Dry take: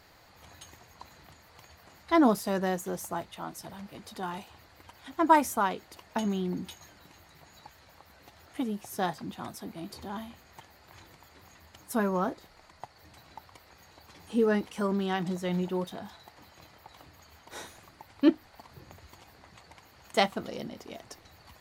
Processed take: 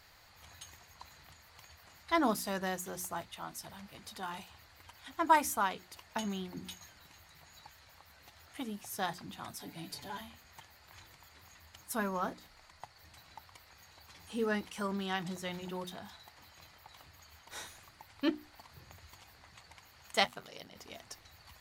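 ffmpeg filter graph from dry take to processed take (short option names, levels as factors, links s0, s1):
-filter_complex "[0:a]asettb=1/sr,asplit=3[s0][s1][s2];[s0]atrim=end=9.604[s3];[s1]atrim=start=9.6:end=10.21,asetpts=PTS-STARTPTS,afade=t=in:d=0.004:c=qsin,afade=t=out:st=0.606:d=0.004:c=qsin,equalizer=f=1200:w=7.7:g=-14.5,aecho=1:1:6.9:0.94,atrim=end_sample=26901,acompressor=mode=upward:threshold=0.00631:ratio=2.5:attack=3.2:release=140:knee=2.83:detection=peak[s4];[s2]atrim=start=10.206[s5];[s3][s4]acrossfade=d=0.004:c1=hsin:c2=qsin[s6];[s6][s5]acrossfade=d=0.004:c1=qsin:c2=hsin,asettb=1/sr,asplit=3[s7][s8][s9];[s7]atrim=end=20.244[s10];[s8]atrim=start=20.24:end=20.76,asetpts=PTS-STARTPTS,afade=t=in:d=0.004:c=qsin,afade=t=out:st=0.516:d=0.004:c=qsin,highpass=f=390:p=1,aeval=exprs='val(0)*sin(2*PI*47*n/s)':c=same[s11];[s9]atrim=start=20.756[s12];[s10][s11]acrossfade=d=0.004:c1=hsin:c2=qsin[s13];[s13][s12]acrossfade=d=0.004:c1=qsin:c2=hsin,equalizer=f=340:w=0.45:g=-9.5,bandreject=f=60:t=h:w=6,bandreject=f=120:t=h:w=6,bandreject=f=180:t=h:w=6,bandreject=f=240:t=h:w=6,bandreject=f=300:t=h:w=6,bandreject=f=360:t=h:w=6"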